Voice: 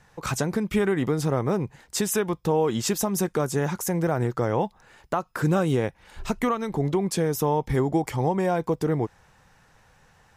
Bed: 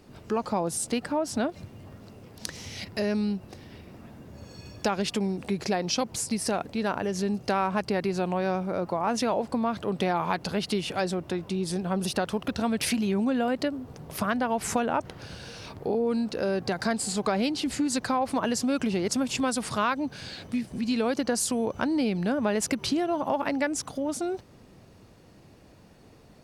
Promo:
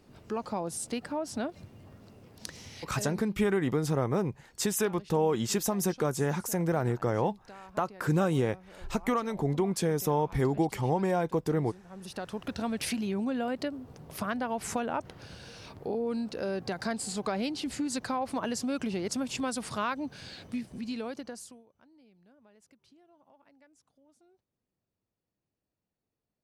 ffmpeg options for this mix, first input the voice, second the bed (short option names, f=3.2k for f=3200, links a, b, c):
-filter_complex "[0:a]adelay=2650,volume=-4dB[a];[1:a]volume=11.5dB,afade=t=out:st=2.57:d=0.72:silence=0.141254,afade=t=in:st=11.88:d=0.65:silence=0.133352,afade=t=out:st=20.54:d=1.1:silence=0.0334965[b];[a][b]amix=inputs=2:normalize=0"